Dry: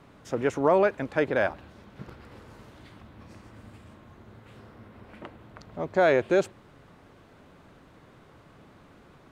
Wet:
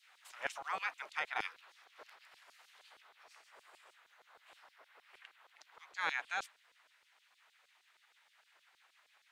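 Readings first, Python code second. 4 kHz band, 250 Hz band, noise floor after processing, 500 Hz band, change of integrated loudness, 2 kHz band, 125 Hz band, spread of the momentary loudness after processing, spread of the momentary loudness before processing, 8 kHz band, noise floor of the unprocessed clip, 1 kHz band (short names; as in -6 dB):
-3.0 dB, -33.0 dB, -73 dBFS, -29.5 dB, -14.5 dB, -7.0 dB, under -30 dB, 22 LU, 14 LU, n/a, -55 dBFS, -11.5 dB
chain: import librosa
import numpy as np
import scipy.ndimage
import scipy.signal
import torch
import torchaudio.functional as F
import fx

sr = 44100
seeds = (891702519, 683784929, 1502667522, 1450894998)

y = fx.spec_gate(x, sr, threshold_db=-15, keep='weak')
y = fx.filter_lfo_highpass(y, sr, shape='saw_down', hz=6.4, low_hz=380.0, high_hz=4900.0, q=1.2)
y = fx.rider(y, sr, range_db=10, speed_s=2.0)
y = F.gain(torch.from_numpy(y), -2.5).numpy()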